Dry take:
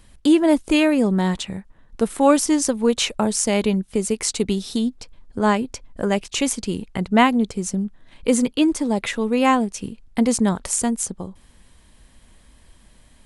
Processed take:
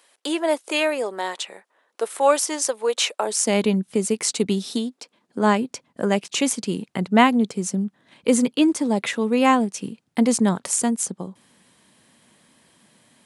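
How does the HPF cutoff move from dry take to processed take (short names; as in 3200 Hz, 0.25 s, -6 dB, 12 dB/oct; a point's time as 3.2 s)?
HPF 24 dB/oct
3.21 s 440 Hz
3.62 s 130 Hz
4.62 s 130 Hz
4.88 s 300 Hz
5.52 s 140 Hz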